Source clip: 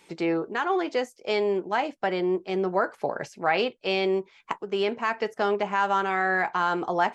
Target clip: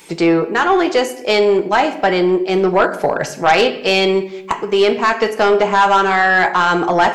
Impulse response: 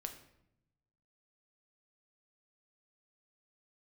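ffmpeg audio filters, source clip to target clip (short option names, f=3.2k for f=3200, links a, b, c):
-filter_complex "[0:a]asplit=2[a][b];[b]aemphasis=mode=production:type=50kf[c];[1:a]atrim=start_sample=2205[d];[c][d]afir=irnorm=-1:irlink=0,volume=7.5dB[e];[a][e]amix=inputs=2:normalize=0,aeval=exprs='1.06*(cos(1*acos(clip(val(0)/1.06,-1,1)))-cos(1*PI/2))+0.237*(cos(5*acos(clip(val(0)/1.06,-1,1)))-cos(5*PI/2))+0.0106*(cos(8*acos(clip(val(0)/1.06,-1,1)))-cos(8*PI/2))':c=same,volume=-2dB"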